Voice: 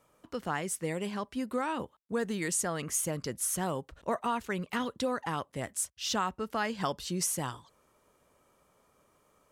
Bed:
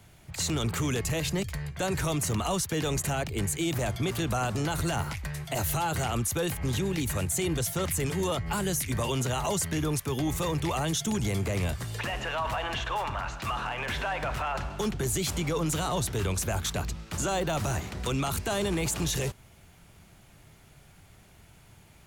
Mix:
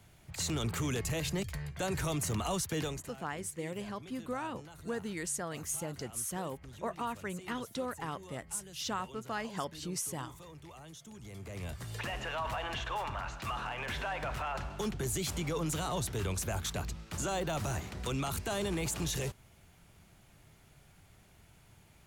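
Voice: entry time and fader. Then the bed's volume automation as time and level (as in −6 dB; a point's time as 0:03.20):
2.75 s, −5.5 dB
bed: 0:02.83 −5 dB
0:03.13 −22 dB
0:11.15 −22 dB
0:11.94 −5.5 dB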